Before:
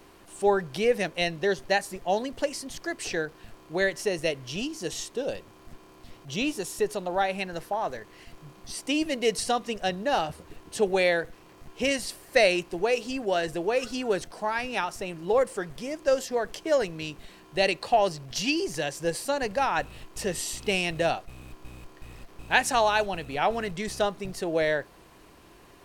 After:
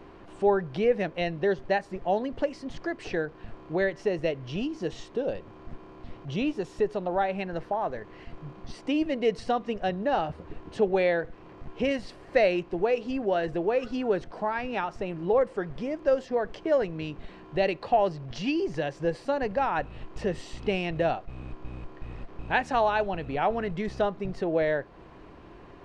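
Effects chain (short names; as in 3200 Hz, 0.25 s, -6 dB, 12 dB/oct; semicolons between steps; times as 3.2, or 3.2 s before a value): in parallel at +1.5 dB: compressor, threshold -37 dBFS, peak gain reduction 20 dB; on the sum: tape spacing loss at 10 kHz 32 dB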